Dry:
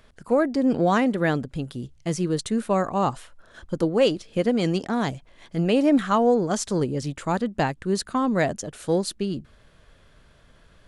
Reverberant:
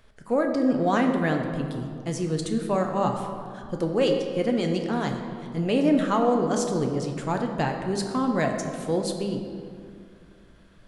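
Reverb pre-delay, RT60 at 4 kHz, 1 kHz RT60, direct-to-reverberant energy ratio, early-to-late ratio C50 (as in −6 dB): 7 ms, 1.3 s, 2.3 s, 3.0 dB, 5.5 dB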